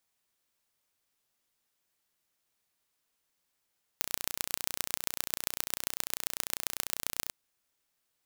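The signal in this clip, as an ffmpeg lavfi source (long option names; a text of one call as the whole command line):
ffmpeg -f lavfi -i "aevalsrc='0.841*eq(mod(n,1465),0)*(0.5+0.5*eq(mod(n,5860),0))':duration=3.29:sample_rate=44100" out.wav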